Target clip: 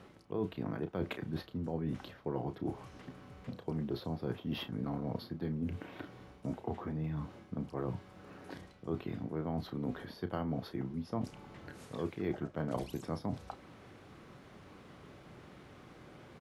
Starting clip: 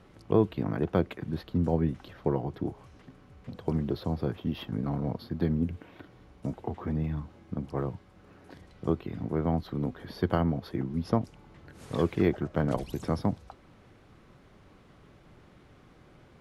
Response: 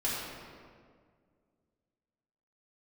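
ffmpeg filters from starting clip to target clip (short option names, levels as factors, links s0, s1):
-filter_complex "[0:a]areverse,acompressor=threshold=0.0158:ratio=5,areverse,highpass=f=120:p=1,asplit=2[s0][s1];[s1]adelay=32,volume=0.282[s2];[s0][s2]amix=inputs=2:normalize=0,volume=1.41"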